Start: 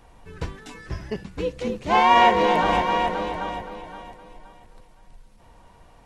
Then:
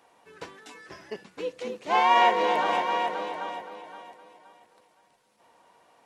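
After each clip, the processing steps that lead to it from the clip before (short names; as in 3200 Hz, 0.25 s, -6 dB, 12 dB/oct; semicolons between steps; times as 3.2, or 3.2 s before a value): HPF 360 Hz 12 dB/oct; gain -4 dB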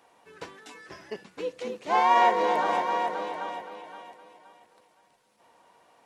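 dynamic EQ 2800 Hz, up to -7 dB, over -45 dBFS, Q 1.9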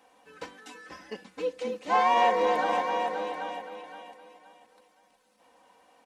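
in parallel at -11.5 dB: soft clip -22 dBFS, distortion -10 dB; on the sum: comb 3.9 ms, depth 69%; gain -4 dB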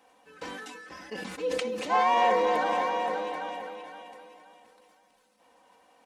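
sustainer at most 24 dB/s; gain -1 dB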